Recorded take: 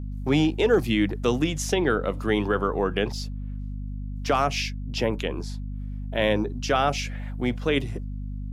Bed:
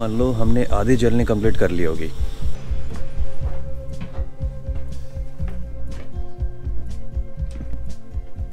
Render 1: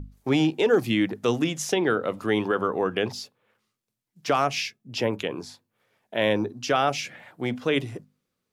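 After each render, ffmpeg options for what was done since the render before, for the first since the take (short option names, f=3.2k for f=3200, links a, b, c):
-af "bandreject=f=50:t=h:w=6,bandreject=f=100:t=h:w=6,bandreject=f=150:t=h:w=6,bandreject=f=200:t=h:w=6,bandreject=f=250:t=h:w=6"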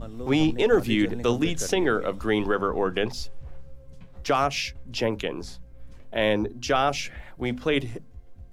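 -filter_complex "[1:a]volume=-17dB[a];[0:a][a]amix=inputs=2:normalize=0"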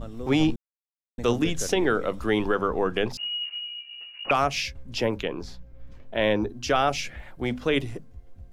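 -filter_complex "[0:a]asettb=1/sr,asplit=3[a][b][c];[a]atrim=end=3.174[d];[b]atrim=start=3.17:end=4.31,asetpts=PTS-STARTPTS,afade=t=in:d=0.004:c=qsin,afade=t=out:st=1.136:d=0.004:c=qsin,lowpass=f=2.5k:t=q:w=0.5098,lowpass=f=2.5k:t=q:w=0.6013,lowpass=f=2.5k:t=q:w=0.9,lowpass=f=2.5k:t=q:w=2.563,afreqshift=-2900[e];[c]atrim=start=4.306[f];[d][e]acrossfade=d=0.004:c1=hsin:c2=qsin[g];[g][f]acrossfade=d=0.004:c1=qsin:c2=hsin,asettb=1/sr,asplit=3[h][i][j];[h]atrim=end=5.184[k];[i]atrim=start=5.18:end=6.42,asetpts=PTS-STARTPTS,afade=t=in:d=0.004:c=qsin,afade=t=out:st=1.236:d=0.004:c=qsin,equalizer=f=9.6k:t=o:w=0.92:g=-11[l];[j]atrim=start=6.416[m];[k][l]acrossfade=d=0.004:c1=hsin:c2=qsin[n];[n][m]acrossfade=d=0.004:c1=qsin:c2=hsin,asplit=3[o][p][q];[o]atrim=end=0.56,asetpts=PTS-STARTPTS,afade=t=out:st=0.556:d=0.004:c=hsin[r];[p]atrim=start=0.56:end=1.18,asetpts=PTS-STARTPTS,volume=0[s];[q]atrim=start=1.18,asetpts=PTS-STARTPTS,afade=t=in:d=0.004:c=hsin[t];[r][s][t]concat=n=3:v=0:a=1"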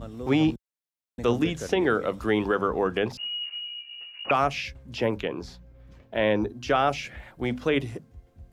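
-filter_complex "[0:a]highpass=50,acrossover=split=3200[a][b];[b]acompressor=threshold=-42dB:ratio=4:attack=1:release=60[c];[a][c]amix=inputs=2:normalize=0"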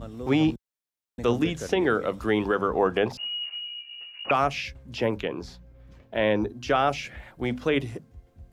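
-filter_complex "[0:a]asettb=1/sr,asplit=3[a][b][c];[a]atrim=end=2.754[d];[b]atrim=start=2.75:end=3.56,asetpts=PTS-STARTPTS,afade=t=in:d=0.004:c=qsin,afade=t=out:st=0.806:d=0.004:c=qsin,equalizer=f=740:t=o:w=1.3:g=5.5[e];[c]atrim=start=3.556[f];[d][e]acrossfade=d=0.004:c1=hsin:c2=qsin[g];[g][f]acrossfade=d=0.004:c1=qsin:c2=hsin"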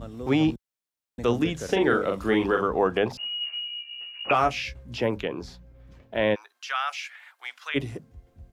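-filter_complex "[0:a]asplit=3[a][b][c];[a]afade=t=out:st=1.68:d=0.02[d];[b]asplit=2[e][f];[f]adelay=41,volume=-4dB[g];[e][g]amix=inputs=2:normalize=0,afade=t=in:st=1.68:d=0.02,afade=t=out:st=2.62:d=0.02[h];[c]afade=t=in:st=2.62:d=0.02[i];[d][h][i]amix=inputs=3:normalize=0,asettb=1/sr,asplit=3[j][k][l];[j]atrim=end=3.394[m];[k]atrim=start=3.39:end=4.98,asetpts=PTS-STARTPTS,afade=t=in:d=0.004:c=qsin,afade=t=out:st=1.586:d=0.004:c=qsin,asplit=2[n][o];[o]adelay=17,volume=-5.5dB[p];[n][p]amix=inputs=2:normalize=0,atrim=end_sample=70119[q];[l]atrim=start=4.976[r];[m][q]acrossfade=d=0.004:c1=hsin:c2=qsin[s];[s][r]acrossfade=d=0.004:c1=qsin:c2=hsin,asplit=3[t][u][v];[t]afade=t=out:st=6.34:d=0.02[w];[u]highpass=f=1.1k:w=0.5412,highpass=f=1.1k:w=1.3066,afade=t=in:st=6.34:d=0.02,afade=t=out:st=7.74:d=0.02[x];[v]afade=t=in:st=7.74:d=0.02[y];[w][x][y]amix=inputs=3:normalize=0"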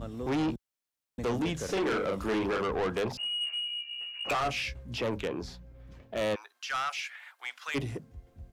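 -af "asoftclip=type=tanh:threshold=-26dB"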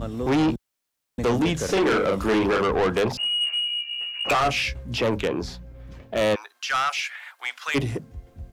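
-af "volume=8.5dB"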